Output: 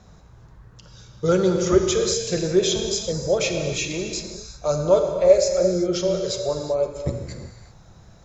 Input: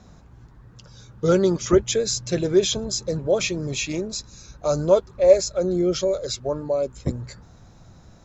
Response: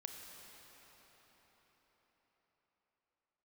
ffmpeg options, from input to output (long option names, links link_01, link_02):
-filter_complex "[0:a]equalizer=frequency=260:width=3.5:gain=-8.5[link_01];[1:a]atrim=start_sample=2205,afade=type=out:start_time=0.44:duration=0.01,atrim=end_sample=19845[link_02];[link_01][link_02]afir=irnorm=-1:irlink=0,volume=5dB"